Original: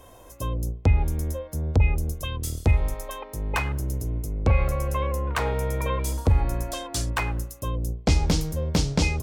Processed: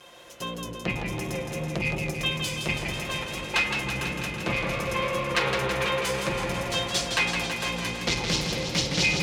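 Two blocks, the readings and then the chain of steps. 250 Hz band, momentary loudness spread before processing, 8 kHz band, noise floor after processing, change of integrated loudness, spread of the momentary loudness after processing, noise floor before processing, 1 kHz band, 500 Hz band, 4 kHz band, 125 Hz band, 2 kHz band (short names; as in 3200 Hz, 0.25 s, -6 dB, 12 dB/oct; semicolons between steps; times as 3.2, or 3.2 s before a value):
-1.0 dB, 8 LU, +2.0 dB, -38 dBFS, -1.0 dB, 7 LU, -47 dBFS, +1.0 dB, +1.0 dB, +9.0 dB, -9.0 dB, +7.5 dB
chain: minimum comb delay 5.7 ms; high shelf 6900 Hz -9.5 dB; notches 50/100/150/200/250/300/350 Hz; soft clip -20 dBFS, distortion -14 dB; weighting filter D; repeats that get brighter 0.226 s, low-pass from 750 Hz, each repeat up 2 oct, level -6 dB; warbling echo 0.164 s, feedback 72%, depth 77 cents, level -6 dB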